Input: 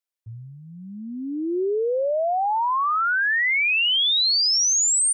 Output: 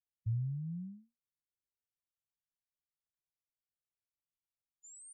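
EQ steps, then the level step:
linear-phase brick-wall band-stop 180–7,000 Hz
high-frequency loss of the air 440 metres
flat-topped bell 5,300 Hz −8.5 dB
+4.0 dB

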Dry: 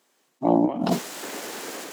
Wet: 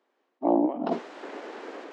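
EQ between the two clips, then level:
high-pass filter 270 Hz 24 dB per octave
head-to-tape spacing loss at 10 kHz 37 dB
0.0 dB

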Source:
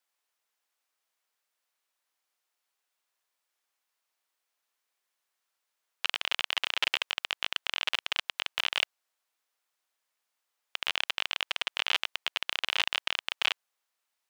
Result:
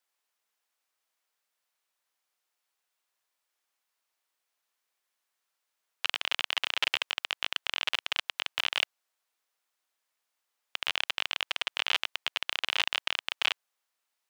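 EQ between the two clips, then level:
high-pass filter 160 Hz 12 dB per octave
0.0 dB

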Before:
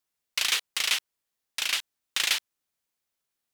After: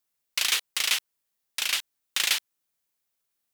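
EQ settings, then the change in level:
high-shelf EQ 10,000 Hz +6.5 dB
0.0 dB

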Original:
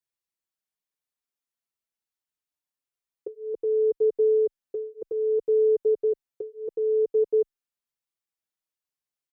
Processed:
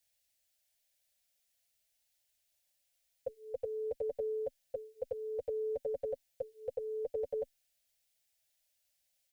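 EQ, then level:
Chebyshev band-stop filter 250–550 Hz, order 3
phaser with its sweep stopped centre 460 Hz, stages 4
+13.5 dB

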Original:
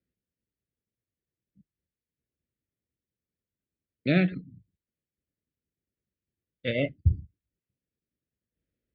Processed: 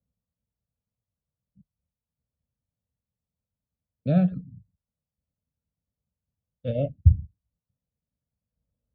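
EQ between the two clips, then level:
high-frequency loss of the air 160 metres
tilt shelving filter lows +7.5 dB, about 1,400 Hz
phaser with its sweep stopped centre 840 Hz, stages 4
0.0 dB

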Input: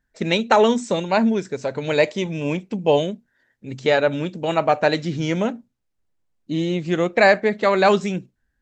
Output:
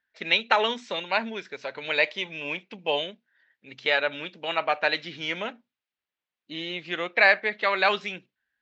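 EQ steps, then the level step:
resonant band-pass 3,100 Hz, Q 1.1
high-frequency loss of the air 190 metres
+6.0 dB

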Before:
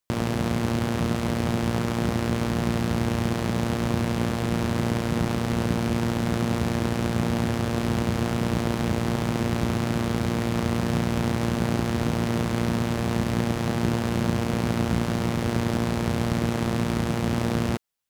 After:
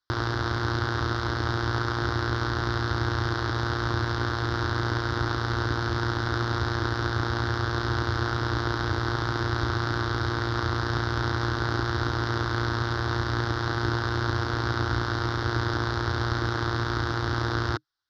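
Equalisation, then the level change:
drawn EQ curve 130 Hz 0 dB, 190 Hz −26 dB, 310 Hz +2 dB, 540 Hz −9 dB, 1,500 Hz +10 dB, 2,500 Hz −13 dB, 3,700 Hz +5 dB, 5,300 Hz +4 dB, 8,600 Hz −29 dB, 13,000 Hz −22 dB
0.0 dB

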